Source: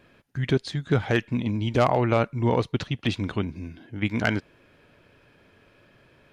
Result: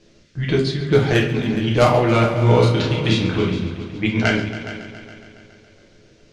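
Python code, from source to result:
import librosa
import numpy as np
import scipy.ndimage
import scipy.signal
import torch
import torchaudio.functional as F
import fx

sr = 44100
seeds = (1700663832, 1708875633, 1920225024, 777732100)

y = fx.env_lowpass(x, sr, base_hz=610.0, full_db=-17.5)
y = fx.high_shelf(y, sr, hz=3100.0, db=11.0)
y = fx.echo_heads(y, sr, ms=139, heads='all three', feedback_pct=49, wet_db=-16)
y = fx.dmg_noise_band(y, sr, seeds[0], low_hz=1400.0, high_hz=6200.0, level_db=-65.0)
y = fx.doubler(y, sr, ms=33.0, db=-3, at=(2.28, 3.67))
y = fx.room_shoebox(y, sr, seeds[1], volume_m3=43.0, walls='mixed', distance_m=0.81)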